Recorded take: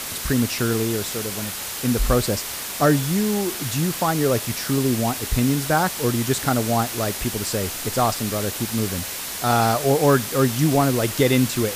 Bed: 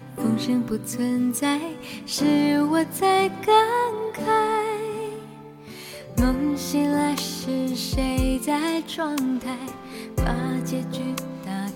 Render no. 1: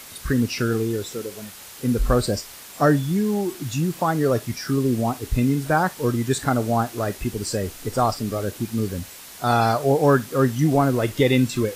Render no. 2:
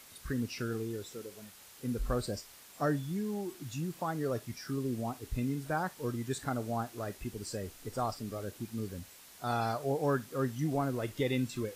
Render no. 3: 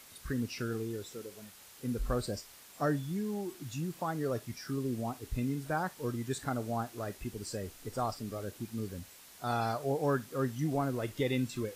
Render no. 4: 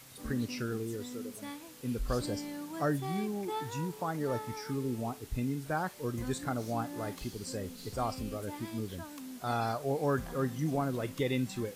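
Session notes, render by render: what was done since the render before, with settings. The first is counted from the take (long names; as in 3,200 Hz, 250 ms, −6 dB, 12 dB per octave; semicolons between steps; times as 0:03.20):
noise reduction from a noise print 11 dB
level −13.5 dB
no processing that can be heard
mix in bed −21 dB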